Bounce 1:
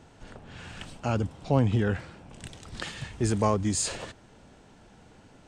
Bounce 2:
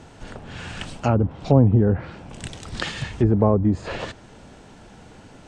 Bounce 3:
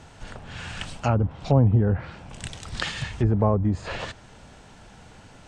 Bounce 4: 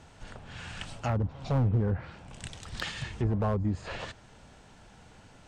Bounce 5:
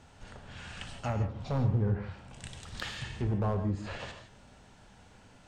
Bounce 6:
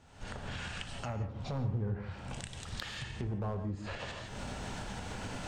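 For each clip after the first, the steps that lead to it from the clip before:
low-pass that closes with the level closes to 660 Hz, closed at -22 dBFS; trim +8.5 dB
peaking EQ 320 Hz -7 dB 1.7 oct
overload inside the chain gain 15 dB; pre-echo 158 ms -22 dB; trim -6 dB
gated-style reverb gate 190 ms flat, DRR 5.5 dB; trim -3.5 dB
recorder AGC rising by 44 dB/s; trim -6 dB

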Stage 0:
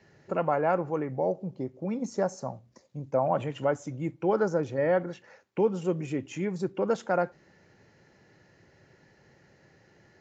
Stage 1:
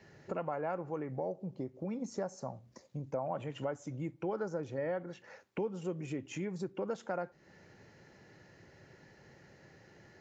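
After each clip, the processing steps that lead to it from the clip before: compression 2.5:1, threshold -40 dBFS, peak gain reduction 13.5 dB; trim +1 dB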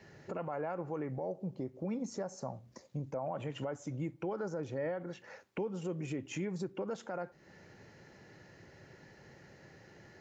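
peak limiter -31 dBFS, peak gain reduction 8 dB; trim +2 dB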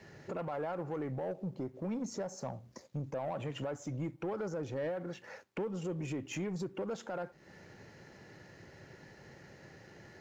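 waveshaping leveller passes 1; trim -1.5 dB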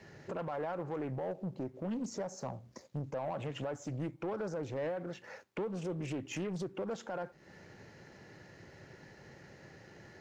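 loudspeaker Doppler distortion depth 0.33 ms

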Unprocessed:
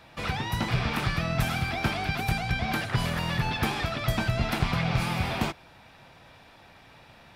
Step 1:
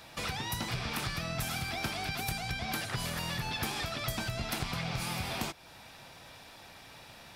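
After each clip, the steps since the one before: compression 2:1, threshold -38 dBFS, peak gain reduction 10.5 dB; tone controls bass -2 dB, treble +11 dB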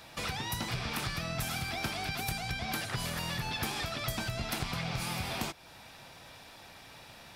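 no audible change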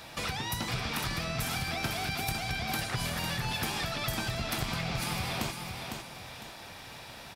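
feedback delay 504 ms, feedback 27%, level -7 dB; in parallel at -3 dB: compression, threshold -44 dBFS, peak gain reduction 14.5 dB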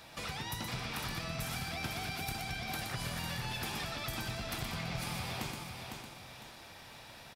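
delay 122 ms -6.5 dB; trim -6.5 dB

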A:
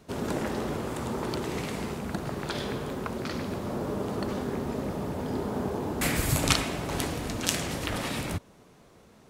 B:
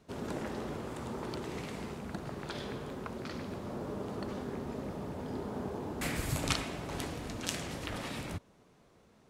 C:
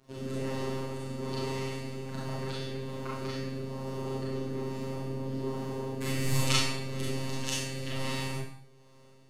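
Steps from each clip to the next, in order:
treble shelf 11 kHz -8 dB; trim -7.5 dB
rotary cabinet horn 1.2 Hz; robot voice 133 Hz; Schroeder reverb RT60 0.59 s, combs from 29 ms, DRR -5.5 dB; trim +2.5 dB

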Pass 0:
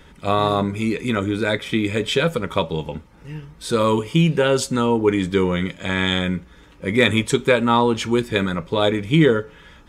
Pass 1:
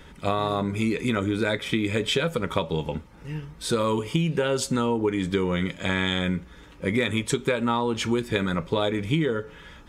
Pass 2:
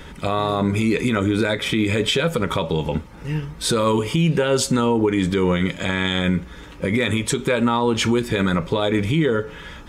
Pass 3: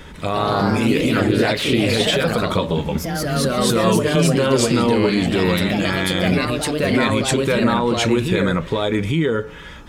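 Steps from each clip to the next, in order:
compression 10:1, threshold -20 dBFS, peak gain reduction 11 dB
peak limiter -18.5 dBFS, peak gain reduction 9 dB; trim +8.5 dB
ever faster or slower copies 142 ms, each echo +2 st, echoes 3

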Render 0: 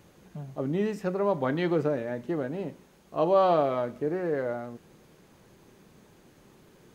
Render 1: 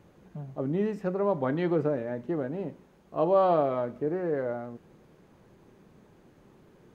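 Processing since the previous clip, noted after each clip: treble shelf 2.6 kHz -11.5 dB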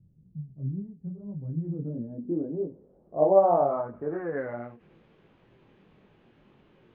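chorus voices 2, 0.76 Hz, delay 22 ms, depth 4.4 ms; low-pass sweep 140 Hz -> 3 kHz, 1.47–4.98 s; endings held to a fixed fall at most 190 dB/s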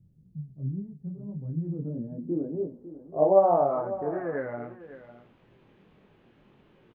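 delay 552 ms -14.5 dB

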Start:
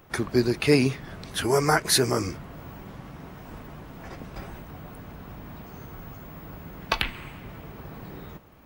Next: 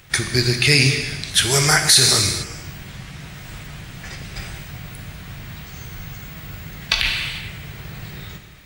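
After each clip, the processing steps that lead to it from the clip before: ten-band graphic EQ 125 Hz +4 dB, 250 Hz -9 dB, 500 Hz -6 dB, 1 kHz -8 dB, 2 kHz +6 dB, 4 kHz +7 dB, 8 kHz +10 dB; gated-style reverb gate 480 ms falling, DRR 5 dB; loudness maximiser +7 dB; trim -1 dB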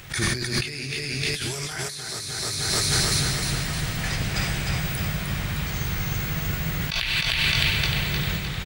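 on a send: feedback delay 306 ms, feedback 52%, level -3.5 dB; on the sum: compressor with a negative ratio -26 dBFS, ratio -1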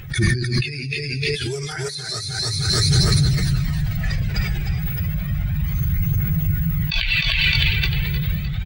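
spectral contrast enhancement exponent 1.8; phaser 0.32 Hz, delay 2.6 ms, feedback 38%; in parallel at -9 dB: saturation -14.5 dBFS, distortion -20 dB; on the sum: trim +1.5 dB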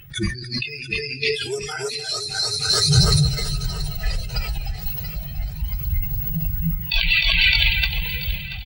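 spectral noise reduction 14 dB; feedback delay 682 ms, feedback 48%, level -14 dB; endings held to a fixed fall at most 130 dB/s; trim +2.5 dB

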